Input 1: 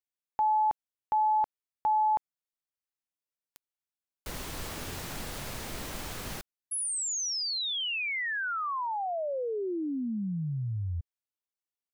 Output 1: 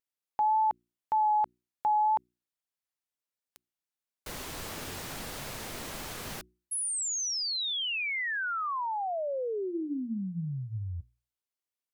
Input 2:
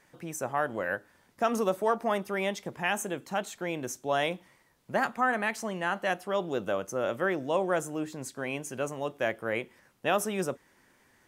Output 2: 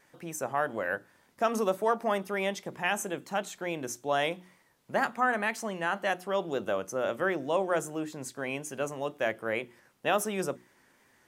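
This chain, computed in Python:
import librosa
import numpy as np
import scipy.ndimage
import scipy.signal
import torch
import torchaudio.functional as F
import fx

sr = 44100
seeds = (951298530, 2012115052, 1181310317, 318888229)

y = fx.low_shelf(x, sr, hz=81.0, db=-7.0)
y = fx.hum_notches(y, sr, base_hz=60, count=6)
y = fx.wow_flutter(y, sr, seeds[0], rate_hz=2.1, depth_cents=26.0)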